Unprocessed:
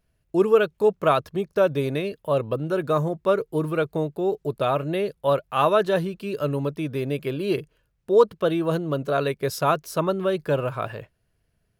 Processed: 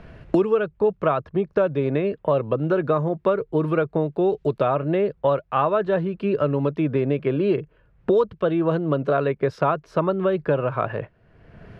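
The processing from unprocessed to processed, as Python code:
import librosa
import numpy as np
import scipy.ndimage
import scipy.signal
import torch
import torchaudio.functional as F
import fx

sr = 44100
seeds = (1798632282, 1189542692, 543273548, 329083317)

y = scipy.signal.sosfilt(scipy.signal.butter(2, 2100.0, 'lowpass', fs=sr, output='sos'), x)
y = fx.band_squash(y, sr, depth_pct=100)
y = F.gain(torch.from_numpy(y), 1.0).numpy()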